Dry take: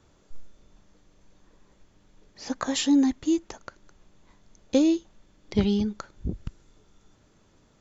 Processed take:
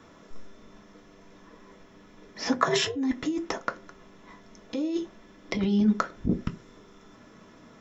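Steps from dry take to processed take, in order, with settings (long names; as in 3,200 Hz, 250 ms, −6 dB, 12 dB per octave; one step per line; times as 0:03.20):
compressor whose output falls as the input rises −29 dBFS, ratio −1
0:02.52–0:02.95: ring modulation 78 Hz → 200 Hz
convolution reverb RT60 0.30 s, pre-delay 3 ms, DRR 3 dB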